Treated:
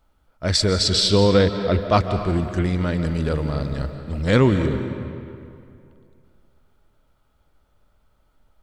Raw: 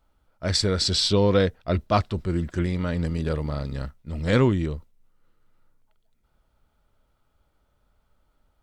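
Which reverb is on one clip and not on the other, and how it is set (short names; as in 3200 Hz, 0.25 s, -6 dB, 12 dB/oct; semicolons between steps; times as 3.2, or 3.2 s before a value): digital reverb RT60 2.5 s, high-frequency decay 0.7×, pre-delay 0.11 s, DRR 8 dB; gain +3.5 dB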